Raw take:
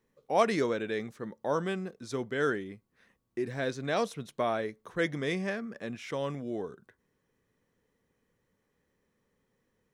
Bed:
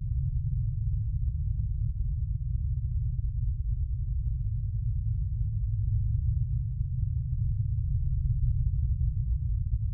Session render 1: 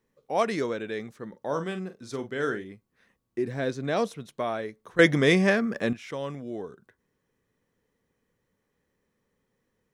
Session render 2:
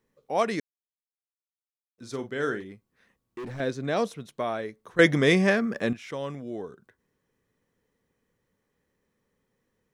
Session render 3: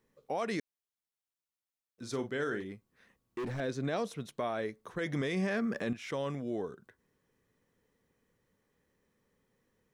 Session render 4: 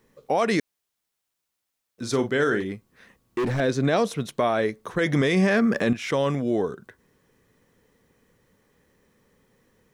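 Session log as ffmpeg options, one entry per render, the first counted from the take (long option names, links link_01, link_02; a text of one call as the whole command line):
ffmpeg -i in.wav -filter_complex "[0:a]asettb=1/sr,asplit=3[link_01][link_02][link_03];[link_01]atrim=end=1.294[link_04];[link_02]atrim=start=1.29:end=2.65,asetpts=PTS-STARTPTS,afade=type=in:duration=0.004:curve=qsin,afade=type=out:start_time=1.356:duration=0.004:curve=qsin,asplit=2[link_05][link_06];[link_06]adelay=43,volume=-10dB[link_07];[link_05][link_07]amix=inputs=2:normalize=0,atrim=end_sample=59976[link_08];[link_03]atrim=start=2.646[link_09];[link_04][link_08]acrossfade=duration=0.004:curve1=hsin:curve2=qsin[link_10];[link_10][link_09]acrossfade=duration=0.004:curve1=qsin:curve2=hsin,asettb=1/sr,asplit=3[link_11][link_12][link_13];[link_11]atrim=end=3.384[link_14];[link_12]atrim=start=3.38:end=4.17,asetpts=PTS-STARTPTS,afade=type=in:duration=0.004:curve=qsin,afade=type=out:start_time=0.786:duration=0.004:curve=qsin,equalizer=frequency=220:width=0.34:gain=5[link_15];[link_13]atrim=start=4.166[link_16];[link_14][link_15]acrossfade=duration=0.004:curve1=hsin:curve2=qsin[link_17];[link_17][link_16]acrossfade=duration=0.004:curve1=qsin:curve2=hsin,asplit=3[link_18][link_19][link_20];[link_18]atrim=end=4.992[link_21];[link_19]atrim=start=4.988:end=5.932,asetpts=PTS-STARTPTS,volume=11.5dB[link_22];[link_20]atrim=start=5.928[link_23];[link_21][link_22]acrossfade=duration=0.004:curve1=hsin:curve2=hsin[link_24];[link_24][link_23]acrossfade=duration=0.004:curve1=hsin:curve2=hsin" out.wav
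ffmpeg -i in.wav -filter_complex "[0:a]asettb=1/sr,asplit=3[link_01][link_02][link_03];[link_01]atrim=end=2.604[link_04];[link_02]atrim=start=2.6:end=3.6,asetpts=PTS-STARTPTS,afade=type=in:duration=0.004:curve=qsin,afade=type=out:start_time=0.996:duration=0.004:curve=qsin,asoftclip=type=hard:threshold=-34dB[link_05];[link_03]atrim=start=3.596[link_06];[link_04][link_05]acrossfade=duration=0.004:curve1=hsin:curve2=qsin[link_07];[link_07][link_06]acrossfade=duration=0.004:curve1=qsin:curve2=hsin,asplit=3[link_08][link_09][link_10];[link_08]atrim=end=0.6,asetpts=PTS-STARTPTS,afade=type=out:start_time=0.596:duration=0.004:curve=hsin[link_11];[link_09]atrim=start=0.6:end=1.98,asetpts=PTS-STARTPTS,volume=0[link_12];[link_10]atrim=start=1.98,asetpts=PTS-STARTPTS,afade=type=in:duration=0.004:curve=hsin[link_13];[link_11][link_12][link_13]concat=n=3:v=0:a=1" out.wav
ffmpeg -i in.wav -af "acompressor=threshold=-29dB:ratio=3,alimiter=level_in=1dB:limit=-24dB:level=0:latency=1:release=13,volume=-1dB" out.wav
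ffmpeg -i in.wav -af "volume=12dB" out.wav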